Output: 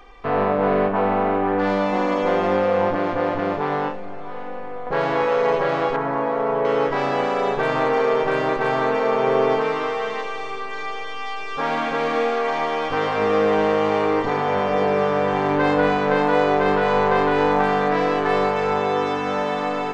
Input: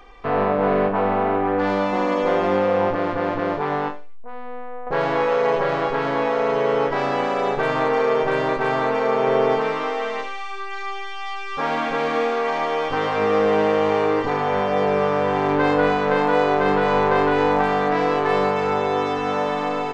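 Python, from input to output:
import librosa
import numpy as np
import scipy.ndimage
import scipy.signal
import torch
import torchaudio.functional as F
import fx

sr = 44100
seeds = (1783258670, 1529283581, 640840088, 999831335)

p1 = fx.cheby1_lowpass(x, sr, hz=1300.0, order=2, at=(5.96, 6.65))
y = p1 + fx.echo_diffused(p1, sr, ms=620, feedback_pct=65, wet_db=-15.5, dry=0)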